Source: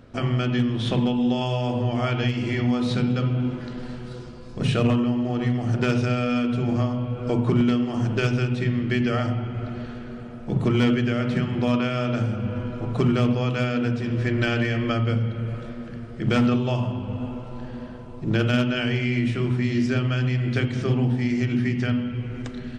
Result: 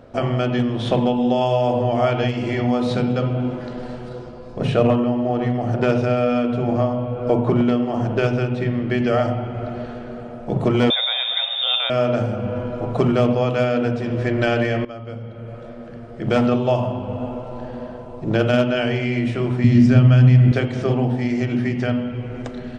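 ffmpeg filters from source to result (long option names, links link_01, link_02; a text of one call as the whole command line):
ffmpeg -i in.wav -filter_complex "[0:a]asettb=1/sr,asplit=3[link_01][link_02][link_03];[link_01]atrim=end=4.094[link_04];[link_02]atrim=start=4.09:end=8.98,asetpts=PTS-STARTPTS,afade=type=in:duration=0.004:curve=qsin,afade=type=out:start_time=4.886:duration=0.004:curve=qsin,highshelf=frequency=5300:gain=-8.5[link_05];[link_03]atrim=start=8.976[link_06];[link_04][link_05]acrossfade=duration=0.004:curve1=hsin:curve2=qsin[link_07];[link_07][link_06]acrossfade=duration=0.004:curve1=qsin:curve2=hsin,asettb=1/sr,asplit=3[link_08][link_09][link_10];[link_08]atrim=end=10.904[link_11];[link_09]atrim=start=10.9:end=11.9,asetpts=PTS-STARTPTS,afade=type=in:duration=0.004:curve=qsin,afade=type=out:start_time=0.996:duration=0.004:curve=qsin,lowpass=frequency=3200:width_type=q:width=0.5098,lowpass=frequency=3200:width_type=q:width=0.6013,lowpass=frequency=3200:width_type=q:width=0.9,lowpass=frequency=3200:width_type=q:width=2.563,afreqshift=-3800[link_12];[link_10]atrim=start=11.896[link_13];[link_11][link_12]acrossfade=duration=0.004:curve1=hsin:curve2=qsin[link_14];[link_14][link_13]acrossfade=duration=0.004:curve1=qsin:curve2=hsin,asettb=1/sr,asplit=3[link_15][link_16][link_17];[link_15]atrim=end=19.644[link_18];[link_16]atrim=start=19.64:end=20.52,asetpts=PTS-STARTPTS,afade=type=in:duration=0.004:curve=qsin,afade=type=out:start_time=0.876:duration=0.004:curve=qsin,lowshelf=frequency=270:width_type=q:width=1.5:gain=10[link_19];[link_17]atrim=start=20.516[link_20];[link_18][link_19]acrossfade=duration=0.004:curve1=hsin:curve2=qsin[link_21];[link_21][link_20]acrossfade=duration=0.004:curve1=qsin:curve2=hsin,asplit=2[link_22][link_23];[link_22]atrim=end=14.85,asetpts=PTS-STARTPTS,afade=type=out:start_time=14.846:duration=0.004:curve=hsin:silence=0.125893[link_24];[link_23]atrim=start=14.85,asetpts=PTS-STARTPTS,afade=type=in:duration=1.79:silence=0.125893[link_25];[link_24][link_25]concat=n=2:v=0:a=1,equalizer=frequency=640:width_type=o:width=1.3:gain=11.5" out.wav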